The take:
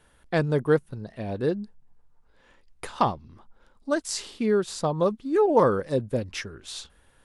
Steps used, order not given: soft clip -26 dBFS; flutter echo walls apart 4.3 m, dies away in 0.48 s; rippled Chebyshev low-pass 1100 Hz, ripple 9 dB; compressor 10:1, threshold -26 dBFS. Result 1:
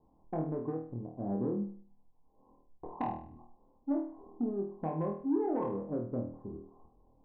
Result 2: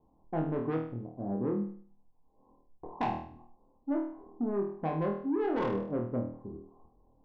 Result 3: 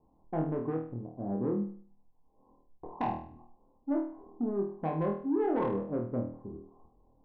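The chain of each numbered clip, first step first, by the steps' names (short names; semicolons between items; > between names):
compressor > rippled Chebyshev low-pass > soft clip > flutter echo; rippled Chebyshev low-pass > soft clip > flutter echo > compressor; rippled Chebyshev low-pass > compressor > soft clip > flutter echo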